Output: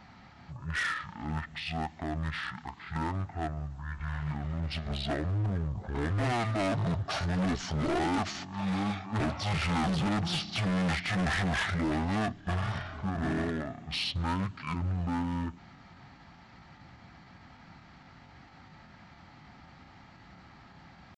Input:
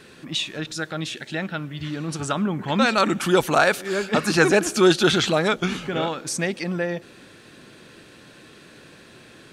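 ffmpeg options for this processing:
-filter_complex "[0:a]equalizer=f=980:w=7.2:g=-11,atempo=0.9,asplit=2[a][b];[b]acrusher=bits=3:mix=0:aa=0.5,volume=-9.5dB[c];[a][c]amix=inputs=2:normalize=0,volume=21.5dB,asoftclip=hard,volume=-21.5dB,asetrate=22050,aresample=44100,volume=-5.5dB"

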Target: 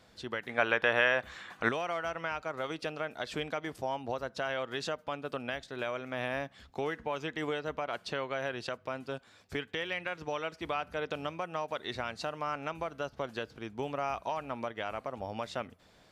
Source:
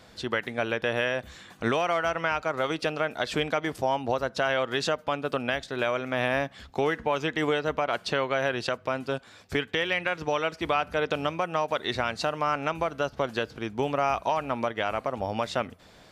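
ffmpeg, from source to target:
-filter_complex "[0:a]asettb=1/sr,asplit=3[a][b][c];[a]atrim=end=0.494[d];[b]atrim=start=0.49:end=1.69,asetpts=PTS-STARTPTS,afade=t=in:d=0.004:c=qsin,afade=t=out:st=1.196:d=0.004:c=qsin,equalizer=f=1.4k:t=o:w=2.9:g=12.5[e];[c]atrim=start=1.686[f];[d][e]acrossfade=d=0.004:c1=hsin:c2=qsin[g];[g][f]acrossfade=d=0.004:c1=qsin:c2=hsin,volume=-8.5dB"

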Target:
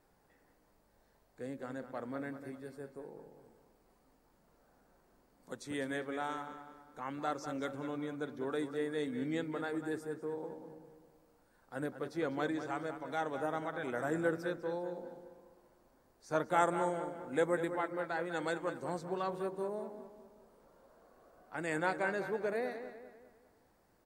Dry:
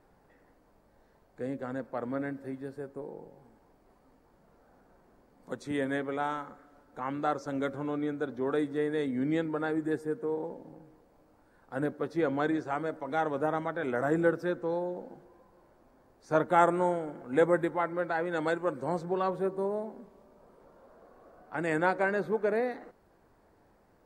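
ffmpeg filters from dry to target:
-filter_complex "[0:a]highshelf=f=3k:g=10.5,asplit=2[a][b];[b]adelay=199,lowpass=f=3.8k:p=1,volume=-9.5dB,asplit=2[c][d];[d]adelay=199,lowpass=f=3.8k:p=1,volume=0.44,asplit=2[e][f];[f]adelay=199,lowpass=f=3.8k:p=1,volume=0.44,asplit=2[g][h];[h]adelay=199,lowpass=f=3.8k:p=1,volume=0.44,asplit=2[i][j];[j]adelay=199,lowpass=f=3.8k:p=1,volume=0.44[k];[c][e][g][i][k]amix=inputs=5:normalize=0[l];[a][l]amix=inputs=2:normalize=0,volume=-7.5dB"

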